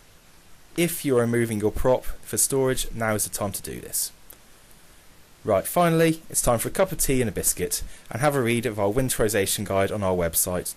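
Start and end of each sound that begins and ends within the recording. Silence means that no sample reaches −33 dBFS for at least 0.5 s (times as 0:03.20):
0:00.76–0:04.33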